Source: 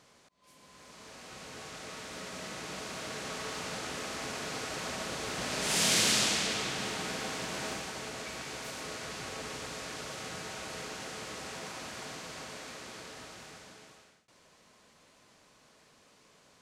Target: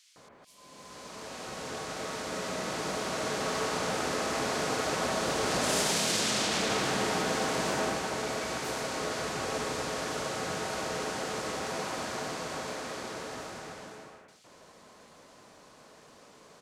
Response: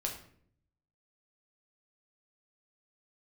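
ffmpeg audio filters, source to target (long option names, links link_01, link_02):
-filter_complex "[0:a]equalizer=frequency=590:width=0.39:gain=5.5,alimiter=limit=-23.5dB:level=0:latency=1:release=15,acrossover=split=2500[link_01][link_02];[link_01]adelay=160[link_03];[link_03][link_02]amix=inputs=2:normalize=0,volume=4.5dB"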